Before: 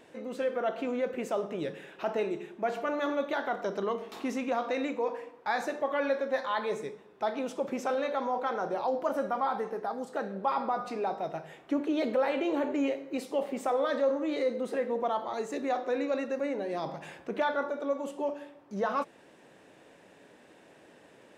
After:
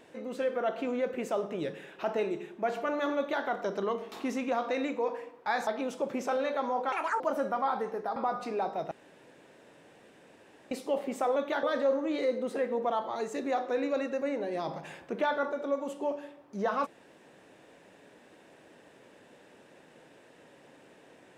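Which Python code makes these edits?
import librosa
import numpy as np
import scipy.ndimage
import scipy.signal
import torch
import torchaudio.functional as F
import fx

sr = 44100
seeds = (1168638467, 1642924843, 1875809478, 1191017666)

y = fx.edit(x, sr, fx.duplicate(start_s=3.17, length_s=0.27, to_s=13.81),
    fx.cut(start_s=5.67, length_s=1.58),
    fx.speed_span(start_s=8.5, length_s=0.49, speed=1.74),
    fx.cut(start_s=9.95, length_s=0.66),
    fx.room_tone_fill(start_s=11.36, length_s=1.8), tone=tone)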